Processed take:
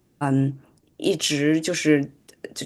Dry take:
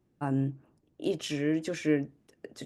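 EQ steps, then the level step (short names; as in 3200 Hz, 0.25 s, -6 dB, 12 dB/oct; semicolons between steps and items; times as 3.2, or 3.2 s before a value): high shelf 2700 Hz +9.5 dB; +8.0 dB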